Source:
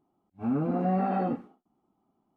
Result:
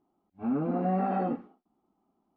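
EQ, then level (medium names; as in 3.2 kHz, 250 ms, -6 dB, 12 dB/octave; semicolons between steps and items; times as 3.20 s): distance through air 160 m; peaking EQ 120 Hz -13.5 dB 0.44 oct; 0.0 dB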